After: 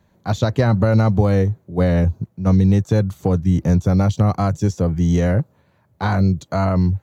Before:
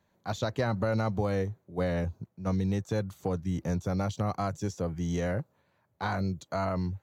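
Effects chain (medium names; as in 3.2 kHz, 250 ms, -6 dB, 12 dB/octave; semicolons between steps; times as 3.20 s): bass shelf 280 Hz +9 dB; trim +8 dB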